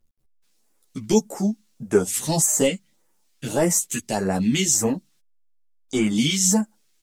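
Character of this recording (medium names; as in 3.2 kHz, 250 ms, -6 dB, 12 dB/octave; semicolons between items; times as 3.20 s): phasing stages 2, 1.7 Hz, lowest notch 690–3500 Hz; a quantiser's noise floor 12-bit, dither none; a shimmering, thickened sound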